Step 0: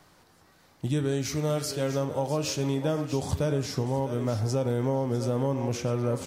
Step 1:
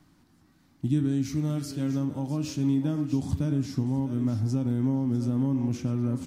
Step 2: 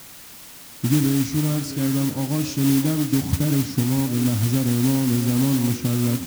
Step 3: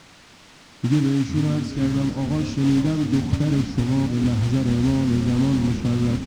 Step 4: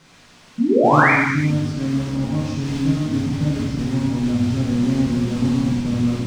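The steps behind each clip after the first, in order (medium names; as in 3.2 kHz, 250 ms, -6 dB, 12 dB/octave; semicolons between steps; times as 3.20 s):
resonant low shelf 360 Hz +8 dB, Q 3; trim -8 dB
modulation noise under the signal 12 dB; word length cut 8-bit, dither triangular; trim +6 dB
distance through air 120 m; frequency-shifting echo 452 ms, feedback 51%, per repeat -37 Hz, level -10 dB
painted sound rise, 0.58–1.11 s, 210–2500 Hz -14 dBFS; gated-style reverb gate 420 ms falling, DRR -6.5 dB; trim -7 dB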